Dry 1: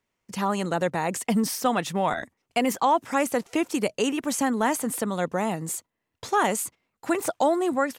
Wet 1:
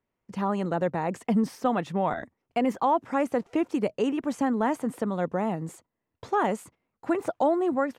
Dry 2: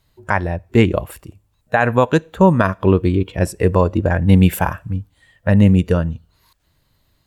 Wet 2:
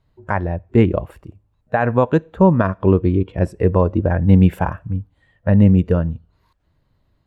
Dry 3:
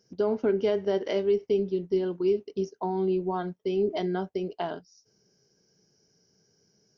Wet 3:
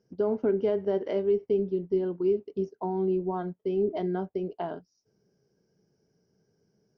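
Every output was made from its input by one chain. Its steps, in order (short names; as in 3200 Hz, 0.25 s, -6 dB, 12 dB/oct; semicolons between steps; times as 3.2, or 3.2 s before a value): LPF 1000 Hz 6 dB/oct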